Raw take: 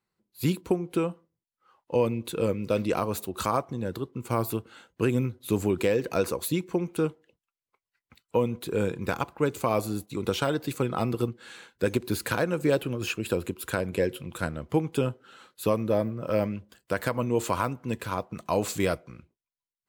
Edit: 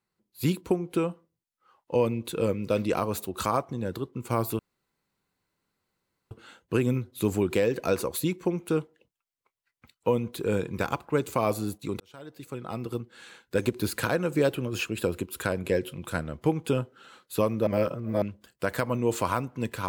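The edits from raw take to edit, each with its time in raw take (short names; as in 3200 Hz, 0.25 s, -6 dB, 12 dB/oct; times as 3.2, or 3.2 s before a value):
4.59 insert room tone 1.72 s
10.28–11.96 fade in
15.95–16.5 reverse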